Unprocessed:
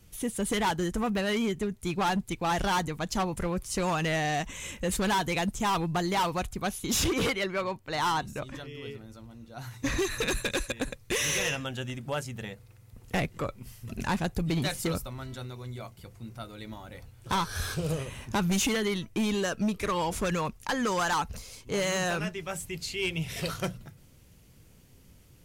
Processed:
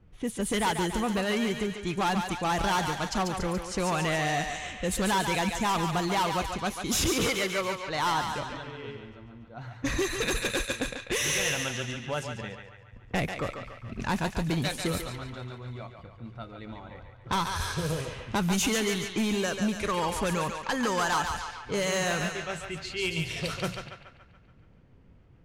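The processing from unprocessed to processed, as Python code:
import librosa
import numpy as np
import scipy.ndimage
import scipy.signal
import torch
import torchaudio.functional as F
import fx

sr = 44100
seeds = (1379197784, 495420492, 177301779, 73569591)

y = fx.echo_thinned(x, sr, ms=142, feedback_pct=64, hz=570.0, wet_db=-5)
y = fx.env_lowpass(y, sr, base_hz=1400.0, full_db=-25.5)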